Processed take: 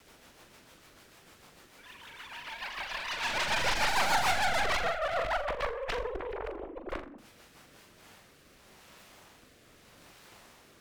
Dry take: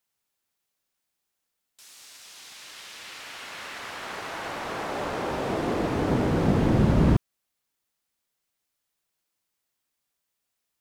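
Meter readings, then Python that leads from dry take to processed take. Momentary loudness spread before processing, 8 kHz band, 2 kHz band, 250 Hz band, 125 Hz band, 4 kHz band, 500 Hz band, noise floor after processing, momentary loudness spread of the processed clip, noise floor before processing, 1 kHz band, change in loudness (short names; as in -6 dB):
21 LU, +3.5 dB, +4.5 dB, -20.5 dB, -21.0 dB, +5.0 dB, -5.0 dB, -59 dBFS, 16 LU, -81 dBFS, +1.5 dB, -5.0 dB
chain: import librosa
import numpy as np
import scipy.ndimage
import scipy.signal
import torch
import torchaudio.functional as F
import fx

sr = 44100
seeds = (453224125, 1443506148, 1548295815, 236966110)

p1 = fx.sine_speech(x, sr)
p2 = fx.dynamic_eq(p1, sr, hz=1000.0, q=1.6, threshold_db=-44.0, ratio=4.0, max_db=4)
p3 = fx.quant_dither(p2, sr, seeds[0], bits=8, dither='triangular')
p4 = p2 + (p3 * librosa.db_to_amplitude(-6.0))
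p5 = fx.over_compress(p4, sr, threshold_db=-28.0, ratio=-0.5)
p6 = fx.lowpass(p5, sr, hz=1500.0, slope=6)
p7 = fx.cheby_harmonics(p6, sr, harmonics=(7, 8), levels_db=(-29, -12), full_scale_db=-12.5)
p8 = np.clip(10.0 ** (28.5 / 20.0) * p7, -1.0, 1.0) / 10.0 ** (28.5 / 20.0)
p9 = fx.rotary_switch(p8, sr, hz=6.7, then_hz=0.8, switch_at_s=7.39)
p10 = fx.room_flutter(p9, sr, wall_m=7.2, rt60_s=0.31)
p11 = fx.vibrato(p10, sr, rate_hz=5.9, depth_cents=67.0)
y = p11 * librosa.db_to_amplitude(4.5)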